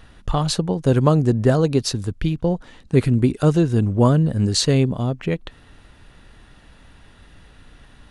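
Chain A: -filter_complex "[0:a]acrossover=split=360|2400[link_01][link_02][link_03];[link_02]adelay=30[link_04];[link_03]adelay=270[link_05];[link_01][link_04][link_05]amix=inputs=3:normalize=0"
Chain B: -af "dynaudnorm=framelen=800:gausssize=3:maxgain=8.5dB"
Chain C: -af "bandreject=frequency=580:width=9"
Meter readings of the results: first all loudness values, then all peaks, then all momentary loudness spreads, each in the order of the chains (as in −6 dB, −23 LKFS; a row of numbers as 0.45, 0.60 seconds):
−20.5, −17.5, −19.5 LKFS; −4.0, −1.0, −3.0 dBFS; 8, 9, 8 LU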